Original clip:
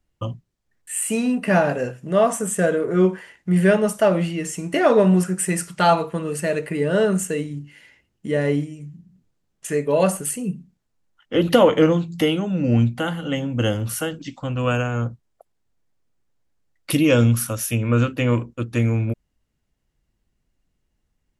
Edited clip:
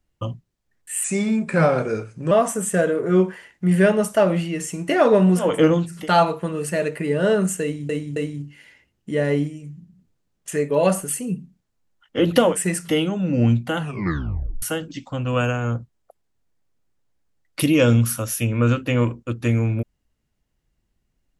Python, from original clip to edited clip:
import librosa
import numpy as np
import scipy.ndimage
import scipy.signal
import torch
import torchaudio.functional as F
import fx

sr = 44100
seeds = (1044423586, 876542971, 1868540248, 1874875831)

y = fx.edit(x, sr, fx.speed_span(start_s=1.04, length_s=1.12, speed=0.88),
    fx.swap(start_s=5.32, length_s=0.36, other_s=11.66, other_length_s=0.5, crossfade_s=0.24),
    fx.repeat(start_s=7.33, length_s=0.27, count=3),
    fx.tape_stop(start_s=13.08, length_s=0.85), tone=tone)